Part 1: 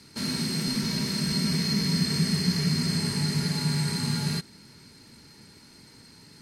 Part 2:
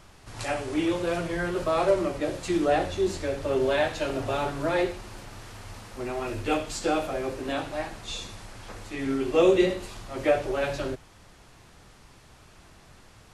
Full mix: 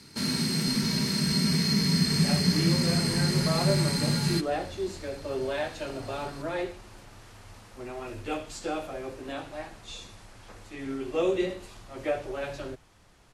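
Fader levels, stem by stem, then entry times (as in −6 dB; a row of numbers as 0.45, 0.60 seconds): +1.0, −6.5 decibels; 0.00, 1.80 seconds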